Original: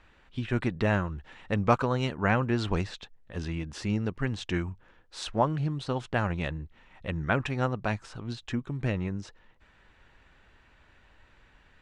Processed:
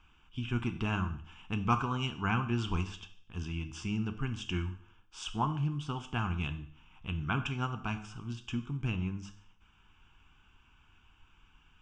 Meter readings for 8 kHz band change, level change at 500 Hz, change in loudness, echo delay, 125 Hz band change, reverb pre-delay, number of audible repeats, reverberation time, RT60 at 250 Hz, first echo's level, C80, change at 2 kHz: -3.0 dB, -13.0 dB, -4.5 dB, no echo, -3.5 dB, 9 ms, no echo, 0.55 s, 0.60 s, no echo, 15.5 dB, -5.5 dB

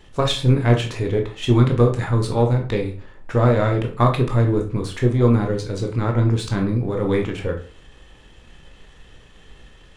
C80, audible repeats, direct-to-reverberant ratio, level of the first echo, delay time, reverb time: 14.5 dB, no echo, 2.0 dB, no echo, no echo, 0.40 s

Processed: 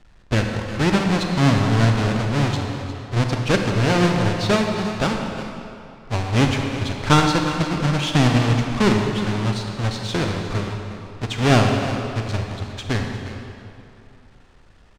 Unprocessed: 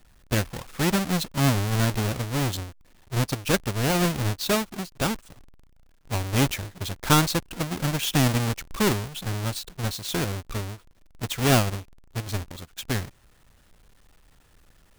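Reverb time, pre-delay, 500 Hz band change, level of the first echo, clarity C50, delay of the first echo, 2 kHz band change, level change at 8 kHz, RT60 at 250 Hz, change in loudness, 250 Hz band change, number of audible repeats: 2.9 s, 30 ms, +6.5 dB, -13.5 dB, 2.5 dB, 357 ms, +5.5 dB, -3.0 dB, 2.7 s, +5.0 dB, +6.5 dB, 1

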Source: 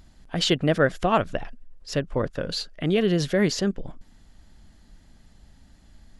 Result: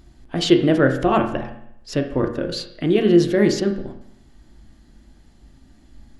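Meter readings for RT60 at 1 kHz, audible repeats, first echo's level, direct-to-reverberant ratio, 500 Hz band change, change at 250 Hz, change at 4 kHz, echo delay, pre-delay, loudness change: 0.75 s, no echo, no echo, 4.0 dB, +5.5 dB, +7.5 dB, +0.5 dB, no echo, 8 ms, +5.0 dB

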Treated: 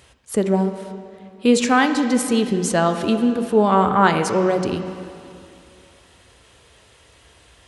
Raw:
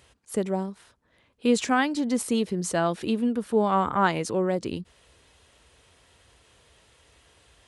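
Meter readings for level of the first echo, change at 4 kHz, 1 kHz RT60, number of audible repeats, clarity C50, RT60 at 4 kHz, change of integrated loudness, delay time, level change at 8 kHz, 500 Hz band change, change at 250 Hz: no echo, +7.0 dB, 2.6 s, no echo, 8.0 dB, 2.3 s, +7.0 dB, no echo, +6.5 dB, +7.5 dB, +7.0 dB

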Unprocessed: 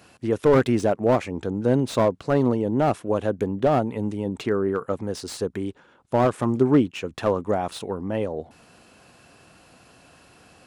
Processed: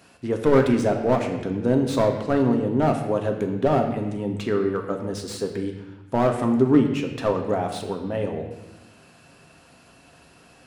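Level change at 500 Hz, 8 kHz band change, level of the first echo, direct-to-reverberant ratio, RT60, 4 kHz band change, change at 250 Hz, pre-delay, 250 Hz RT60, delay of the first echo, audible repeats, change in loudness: 0.0 dB, -0.5 dB, no echo, 3.0 dB, 1.0 s, 0.0 dB, +1.5 dB, 3 ms, 1.6 s, no echo, no echo, +0.5 dB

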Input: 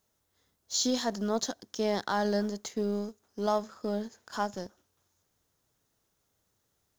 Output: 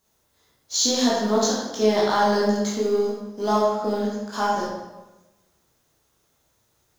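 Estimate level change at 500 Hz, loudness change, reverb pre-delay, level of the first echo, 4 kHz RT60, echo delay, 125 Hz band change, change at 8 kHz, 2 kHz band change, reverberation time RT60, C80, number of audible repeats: +10.5 dB, +9.5 dB, 12 ms, no echo, 0.80 s, no echo, no reading, +9.5 dB, +9.0 dB, 1.1 s, 3.0 dB, no echo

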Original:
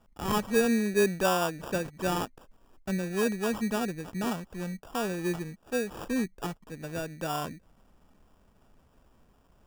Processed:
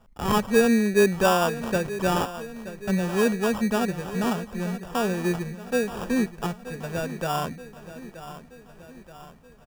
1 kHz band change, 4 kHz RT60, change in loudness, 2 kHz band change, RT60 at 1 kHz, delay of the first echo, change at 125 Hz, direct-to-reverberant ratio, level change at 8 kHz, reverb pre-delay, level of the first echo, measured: +6.0 dB, no reverb, +5.5 dB, +5.5 dB, no reverb, 927 ms, +6.5 dB, no reverb, +3.5 dB, no reverb, -14.0 dB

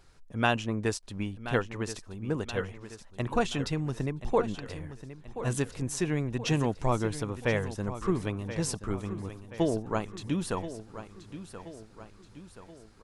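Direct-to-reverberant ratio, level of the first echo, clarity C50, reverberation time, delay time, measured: no reverb, -12.5 dB, no reverb, no reverb, 1028 ms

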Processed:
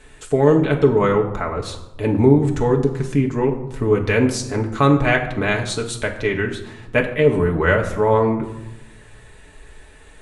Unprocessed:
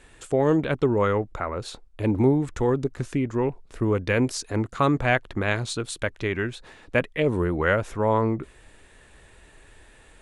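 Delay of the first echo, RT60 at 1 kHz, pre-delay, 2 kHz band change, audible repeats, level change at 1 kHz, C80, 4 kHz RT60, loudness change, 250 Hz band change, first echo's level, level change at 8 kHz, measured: no echo, 0.95 s, 5 ms, +5.5 dB, no echo, +5.0 dB, 12.0 dB, 0.60 s, +6.0 dB, +6.0 dB, no echo, +5.0 dB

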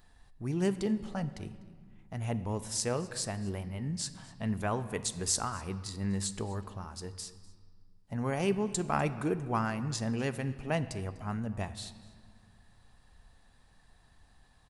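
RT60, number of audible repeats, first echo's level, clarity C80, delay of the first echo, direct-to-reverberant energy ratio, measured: 1.8 s, 1, -22.0 dB, 14.5 dB, 248 ms, 11.0 dB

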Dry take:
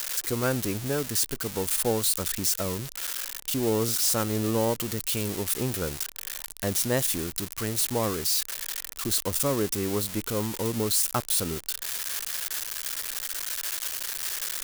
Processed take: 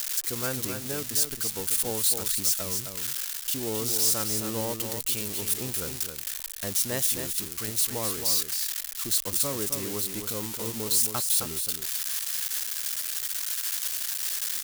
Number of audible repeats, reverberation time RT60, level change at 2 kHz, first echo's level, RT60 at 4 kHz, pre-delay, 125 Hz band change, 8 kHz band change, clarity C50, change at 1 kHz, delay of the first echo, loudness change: 1, no reverb, -2.5 dB, -7.0 dB, no reverb, no reverb, -6.5 dB, +2.0 dB, no reverb, -5.0 dB, 265 ms, +0.5 dB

